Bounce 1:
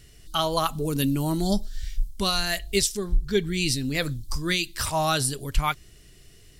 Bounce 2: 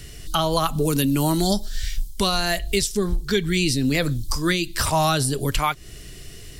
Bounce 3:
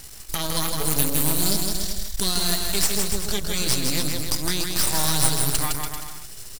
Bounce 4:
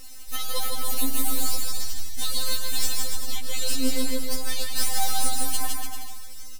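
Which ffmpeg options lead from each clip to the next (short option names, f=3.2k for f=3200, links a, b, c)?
-filter_complex "[0:a]acrossover=split=250|1000[a][b][c];[a]acompressor=threshold=-34dB:ratio=4[d];[b]acompressor=threshold=-33dB:ratio=4[e];[c]acompressor=threshold=-33dB:ratio=4[f];[d][e][f]amix=inputs=3:normalize=0,asplit=2[g][h];[h]alimiter=level_in=1.5dB:limit=-24dB:level=0:latency=1:release=247,volume=-1.5dB,volume=1dB[i];[g][i]amix=inputs=2:normalize=0,volume=5.5dB"
-filter_complex "[0:a]aexciter=amount=3.6:drive=6.2:freq=3.9k,aeval=exprs='max(val(0),0)':c=same,asplit=2[a][b];[b]aecho=0:1:160|288|390.4|472.3|537.9:0.631|0.398|0.251|0.158|0.1[c];[a][c]amix=inputs=2:normalize=0,volume=-4.5dB"
-af "asoftclip=type=hard:threshold=-11.5dB,afftfilt=real='re*3.46*eq(mod(b,12),0)':imag='im*3.46*eq(mod(b,12),0)':win_size=2048:overlap=0.75,volume=-1.5dB"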